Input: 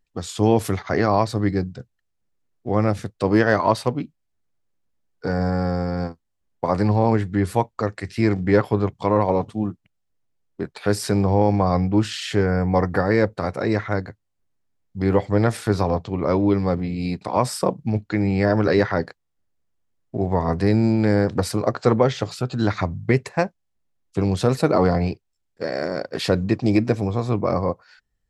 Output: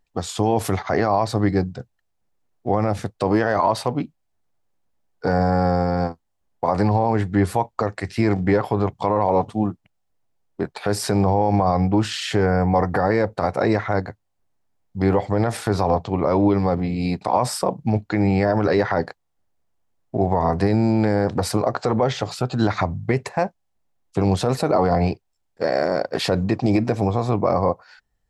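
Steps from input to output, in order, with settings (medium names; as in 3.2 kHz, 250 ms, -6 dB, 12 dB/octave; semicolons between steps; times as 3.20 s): peaking EQ 780 Hz +7.5 dB 0.92 oct; peak limiter -10.5 dBFS, peak gain reduction 10.5 dB; trim +2 dB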